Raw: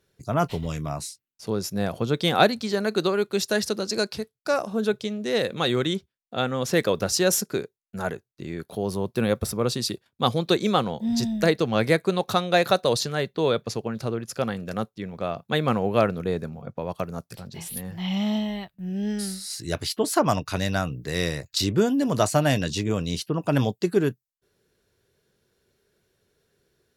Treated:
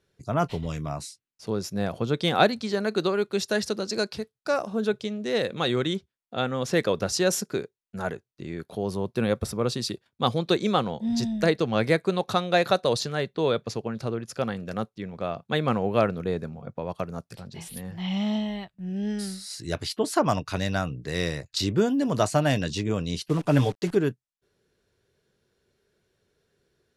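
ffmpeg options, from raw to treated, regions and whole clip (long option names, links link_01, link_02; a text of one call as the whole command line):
ffmpeg -i in.wav -filter_complex "[0:a]asettb=1/sr,asplit=3[link_01][link_02][link_03];[link_01]atrim=end=23.284[link_04];[link_02]atrim=start=23.28:end=23.95,asetpts=PTS-STARTPTS,afade=type=in:duration=0.004:curve=qsin,afade=type=out:start_time=0.666:duration=0.004:curve=qsin,aecho=1:1:6.8:0.59,atrim=end_sample=29547,acrusher=bits=7:dc=4:mix=0:aa=0.000001[link_05];[link_03]atrim=start=23.946[link_06];[link_04][link_05]acrossfade=duration=0.004:curve1=hsin:curve2=qsin[link_07];[link_07][link_06]acrossfade=duration=0.004:curve1=qsin:curve2=hsin,lowpass=frequency=12000:width=0.5412,lowpass=frequency=12000:width=1.3066,highshelf=frequency=8300:gain=-7,volume=-1.5dB" out.wav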